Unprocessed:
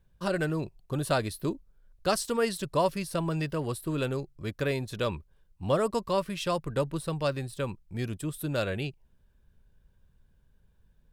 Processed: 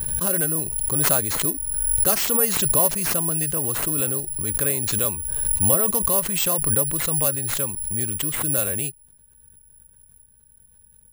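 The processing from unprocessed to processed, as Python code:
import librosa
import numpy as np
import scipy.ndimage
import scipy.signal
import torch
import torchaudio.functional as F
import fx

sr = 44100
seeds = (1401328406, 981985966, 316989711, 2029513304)

y = (np.kron(x[::4], np.eye(4)[0]) * 4)[:len(x)]
y = fx.pre_swell(y, sr, db_per_s=26.0)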